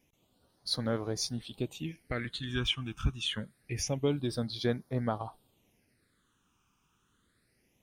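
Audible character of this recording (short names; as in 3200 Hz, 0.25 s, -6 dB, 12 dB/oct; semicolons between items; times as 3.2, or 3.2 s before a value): phasing stages 8, 0.26 Hz, lowest notch 570–2700 Hz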